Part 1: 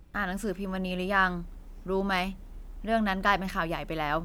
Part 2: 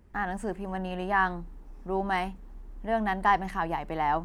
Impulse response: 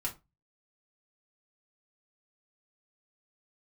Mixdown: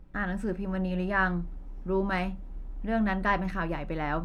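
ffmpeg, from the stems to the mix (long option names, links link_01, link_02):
-filter_complex "[0:a]lowpass=frequency=1300:poles=1,volume=-2dB,asplit=2[link_01][link_02];[link_02]volume=-8dB[link_03];[1:a]volume=-11dB[link_04];[2:a]atrim=start_sample=2205[link_05];[link_03][link_05]afir=irnorm=-1:irlink=0[link_06];[link_01][link_04][link_06]amix=inputs=3:normalize=0"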